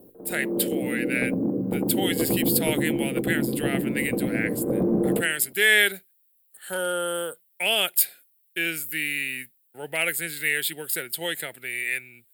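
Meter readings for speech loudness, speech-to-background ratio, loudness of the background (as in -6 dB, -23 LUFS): -26.0 LUFS, 0.5 dB, -26.5 LUFS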